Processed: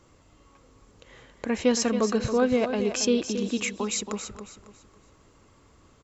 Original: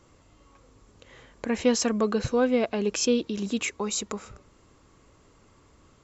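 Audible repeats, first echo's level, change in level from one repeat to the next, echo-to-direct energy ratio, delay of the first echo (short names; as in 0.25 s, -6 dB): 3, -9.5 dB, -10.0 dB, -9.0 dB, 0.275 s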